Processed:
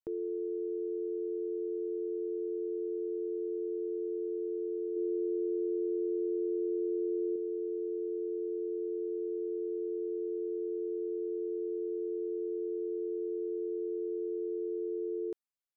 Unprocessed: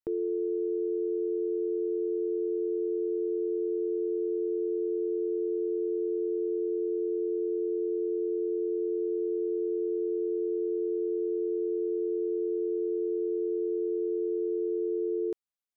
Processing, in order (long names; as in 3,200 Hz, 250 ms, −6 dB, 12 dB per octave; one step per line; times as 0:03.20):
0:04.96–0:07.36: parametric band 310 Hz +5 dB 0.71 octaves
level −5.5 dB